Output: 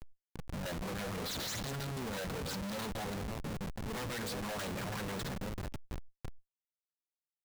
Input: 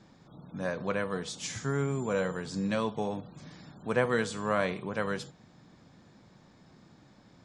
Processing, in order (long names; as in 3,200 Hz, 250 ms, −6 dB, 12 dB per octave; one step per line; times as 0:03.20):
feedback delay that plays each chunk backwards 262 ms, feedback 58%, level −11 dB
high-shelf EQ 2,100 Hz +7.5 dB
shaped tremolo saw down 6.1 Hz, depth 85%
all-pass phaser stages 8, 2.6 Hz, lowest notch 320–2,500 Hz
wrap-around overflow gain 25 dB
0:01.20–0:03.42: thirty-one-band graphic EQ 160 Hz −7 dB, 315 Hz −10 dB, 2,500 Hz −8 dB, 4,000 Hz +9 dB
comparator with hysteresis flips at −46.5 dBFS
level that may fall only so fast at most 80 dB per second
level +1.5 dB